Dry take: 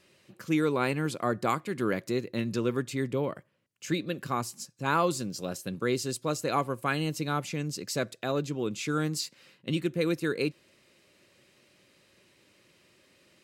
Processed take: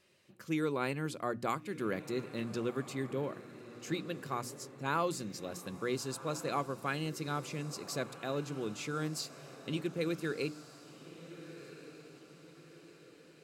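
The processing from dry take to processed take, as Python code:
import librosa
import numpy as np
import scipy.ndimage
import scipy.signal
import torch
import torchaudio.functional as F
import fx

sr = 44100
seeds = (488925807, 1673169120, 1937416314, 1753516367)

y = fx.hum_notches(x, sr, base_hz=60, count=5)
y = fx.echo_diffused(y, sr, ms=1425, feedback_pct=48, wet_db=-14)
y = y * librosa.db_to_amplitude(-6.5)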